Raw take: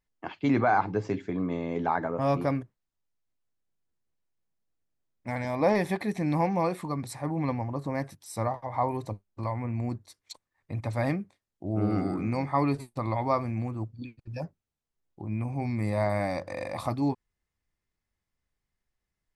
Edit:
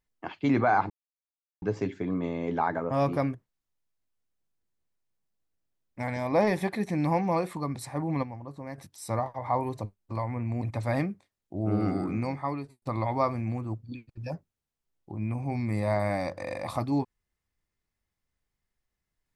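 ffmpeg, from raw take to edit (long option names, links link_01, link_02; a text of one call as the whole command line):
ffmpeg -i in.wav -filter_complex "[0:a]asplit=6[link_01][link_02][link_03][link_04][link_05][link_06];[link_01]atrim=end=0.9,asetpts=PTS-STARTPTS,afade=type=out:start_time=0.896:duration=0.004:curve=hsin,apad=pad_dur=0.72[link_07];[link_02]atrim=start=0.9:end=7.512,asetpts=PTS-STARTPTS,afade=type=in:duration=0.004:curve=hsin[link_08];[link_03]atrim=start=7.508:end=8.062,asetpts=PTS-STARTPTS,volume=-8.5dB[link_09];[link_04]atrim=start=8.058:end=9.902[link_10];[link_05]atrim=start=10.718:end=12.92,asetpts=PTS-STARTPTS,afade=type=out:start_time=1.522:duration=0.68[link_11];[link_06]atrim=start=12.92,asetpts=PTS-STARTPTS,afade=type=in:duration=0.004:curve=hsin[link_12];[link_07][link_08]concat=n=2:v=0:a=1[link_13];[link_13][link_09]acrossfade=duration=0.004:curve1=hsin:curve2=hsin[link_14];[link_14][link_10]acrossfade=duration=0.004:curve1=hsin:curve2=hsin[link_15];[link_11][link_12]concat=n=2:v=0:a=1[link_16];[link_15][link_16]acrossfade=duration=0.004:curve1=hsin:curve2=hsin" out.wav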